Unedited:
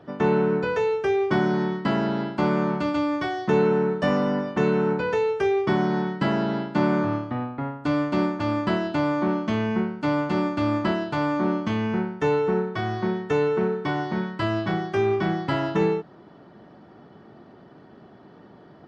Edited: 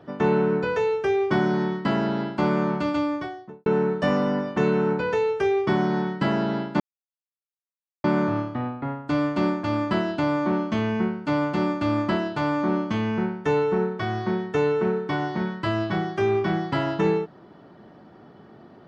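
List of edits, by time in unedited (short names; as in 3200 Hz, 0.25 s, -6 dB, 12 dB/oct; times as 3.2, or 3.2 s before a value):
2.95–3.66 studio fade out
6.8 insert silence 1.24 s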